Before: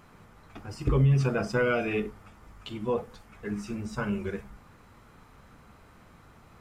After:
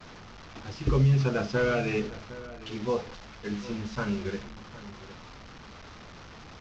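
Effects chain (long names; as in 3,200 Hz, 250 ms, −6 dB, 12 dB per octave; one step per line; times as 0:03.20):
linear delta modulator 32 kbit/s, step −36.5 dBFS
downward expander −40 dBFS
slap from a distant wall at 130 metres, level −16 dB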